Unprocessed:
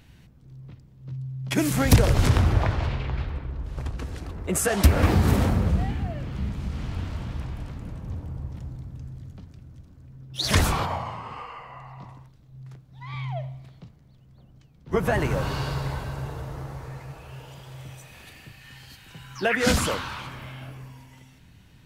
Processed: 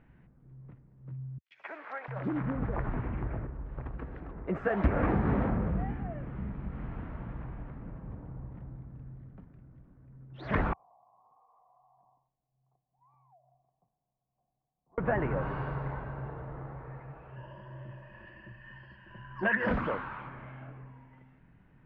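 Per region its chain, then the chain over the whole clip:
1.38–3.47 s: compression 5:1, threshold -21 dBFS + three bands offset in time highs, mids, lows 130/700 ms, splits 570/3200 Hz
10.73–14.98 s: cascade formant filter a + peaking EQ 1.4 kHz -10.5 dB 1.3 oct + compression 5:1, threshold -57 dBFS
17.36–19.71 s: rippled EQ curve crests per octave 1.3, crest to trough 17 dB + transformer saturation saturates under 1.2 kHz
whole clip: low-pass 1.9 kHz 24 dB/octave; peaking EQ 84 Hz -12 dB 0.57 oct; trim -4.5 dB

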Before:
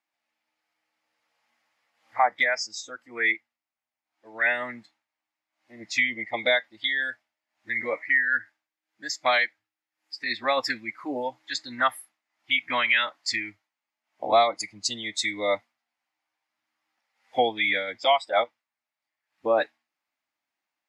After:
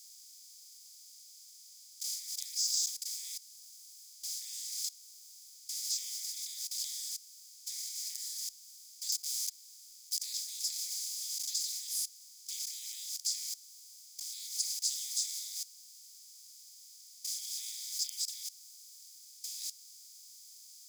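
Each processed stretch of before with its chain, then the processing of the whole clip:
9.12–10.20 s: median filter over 5 samples + waveshaping leveller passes 5
whole clip: spectral levelling over time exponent 0.2; level held to a coarse grid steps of 19 dB; inverse Chebyshev high-pass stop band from 1.4 kHz, stop band 70 dB; trim -3 dB

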